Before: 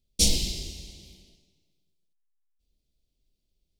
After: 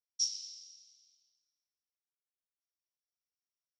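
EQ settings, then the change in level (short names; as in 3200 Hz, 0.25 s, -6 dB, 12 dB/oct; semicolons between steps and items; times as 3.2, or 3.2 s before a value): band-pass 5600 Hz, Q 18; air absorption 63 m; +1.5 dB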